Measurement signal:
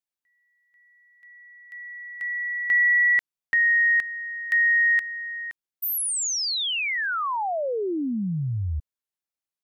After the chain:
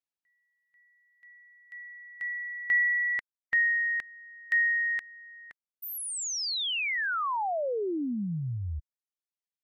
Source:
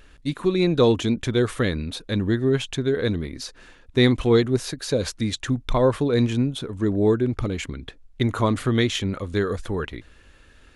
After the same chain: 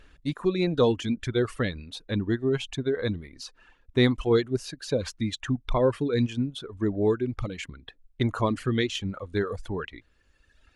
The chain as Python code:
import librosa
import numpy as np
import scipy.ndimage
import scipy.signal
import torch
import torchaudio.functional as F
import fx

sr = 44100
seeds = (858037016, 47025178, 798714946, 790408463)

y = fx.dereverb_blind(x, sr, rt60_s=1.7)
y = fx.high_shelf(y, sr, hz=8200.0, db=-10.0)
y = F.gain(torch.from_numpy(y), -3.0).numpy()